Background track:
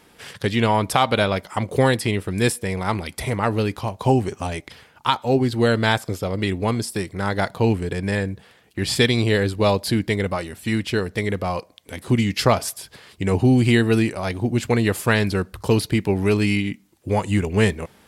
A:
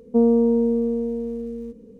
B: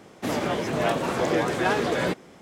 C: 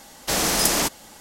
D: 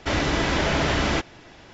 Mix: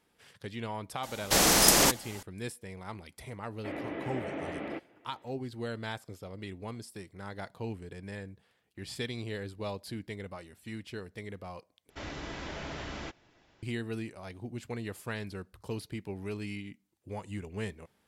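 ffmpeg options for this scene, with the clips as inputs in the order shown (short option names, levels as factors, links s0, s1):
-filter_complex "[4:a]asplit=2[s0][s1];[0:a]volume=0.112[s2];[s0]highpass=200,equalizer=f=310:t=q:w=4:g=4,equalizer=f=520:t=q:w=4:g=4,equalizer=f=1000:t=q:w=4:g=-8,equalizer=f=1500:t=q:w=4:g=-8,lowpass=f=2300:w=0.5412,lowpass=f=2300:w=1.3066[s3];[s2]asplit=2[s4][s5];[s4]atrim=end=11.904[s6];[s1]atrim=end=1.73,asetpts=PTS-STARTPTS,volume=0.133[s7];[s5]atrim=start=13.626[s8];[3:a]atrim=end=1.2,asetpts=PTS-STARTPTS,volume=0.891,afade=t=in:d=0.004:c=hsin,afade=t=out:st=1.196:d=0.004:c=hsin,adelay=1030[s9];[s3]atrim=end=1.73,asetpts=PTS-STARTPTS,volume=0.211,afade=t=in:d=0.004:c=hsin,afade=t=out:st=1.726:d=0.004:c=hsin,adelay=3580[s10];[s6][s7]acrossfade=d=0.004:c1=hsin:c2=hsin[s11];[s11][s8]acrossfade=d=0.004:c1=hsin:c2=hsin[s12];[s12][s9][s10]amix=inputs=3:normalize=0"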